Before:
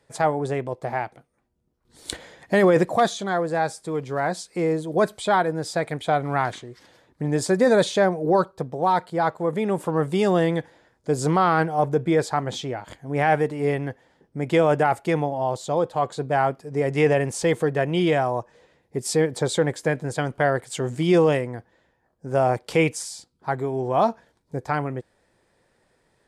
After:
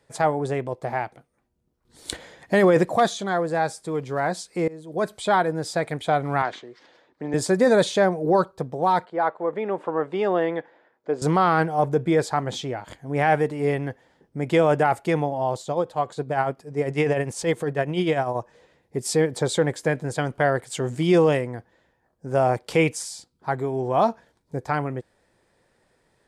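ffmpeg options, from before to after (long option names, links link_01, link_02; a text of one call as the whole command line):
ffmpeg -i in.wav -filter_complex "[0:a]asettb=1/sr,asplit=3[link_01][link_02][link_03];[link_01]atrim=end=6.424[link_04];[link_02]atrim=start=6.42:end=7.34,asetpts=PTS-STARTPTS,afade=type=in:duration=0.004:curve=qsin,afade=type=out:start_time=0.916:duration=0.004:curve=qsin,acrossover=split=240 5900:gain=0.141 1 0.0794[link_05][link_06][link_07];[link_05][link_06][link_07]amix=inputs=3:normalize=0[link_08];[link_03]atrim=start=7.336[link_09];[link_04][link_08]acrossfade=duration=0.004:curve1=hsin:curve2=qsin[link_10];[link_10][link_09]acrossfade=duration=0.004:curve1=qsin:curve2=hsin,asettb=1/sr,asplit=3[link_11][link_12][link_13];[link_11]atrim=end=9.054[link_14];[link_12]atrim=start=9.05:end=11.22,asetpts=PTS-STARTPTS,afade=type=in:duration=0.004:curve=qsin,afade=type=out:start_time=2.166:duration=0.004:curve=qsin,highpass=340,lowpass=2300[link_15];[link_13]atrim=start=11.216[link_16];[link_14][link_15]acrossfade=duration=0.004:curve1=hsin:curve2=qsin[link_17];[link_17][link_16]acrossfade=duration=0.004:curve1=qsin:curve2=hsin,asplit=3[link_18][link_19][link_20];[link_18]afade=type=out:start_time=15.58:duration=0.02[link_21];[link_19]tremolo=f=10:d=0.55,afade=type=in:start_time=15.58:duration=0.02,afade=type=out:start_time=18.34:duration=0.02[link_22];[link_20]afade=type=in:start_time=18.34:duration=0.02[link_23];[link_21][link_22][link_23]amix=inputs=3:normalize=0,asplit=2[link_24][link_25];[link_24]atrim=end=4.68,asetpts=PTS-STARTPTS,afade=type=out:start_time=4.676:duration=0.004:curve=hsin:silence=0.0794328[link_26];[link_25]atrim=start=4.68,asetpts=PTS-STARTPTS,afade=type=in:duration=0.61:silence=0.0794328[link_27];[link_26][link_27]concat=n=2:v=0:a=1" out.wav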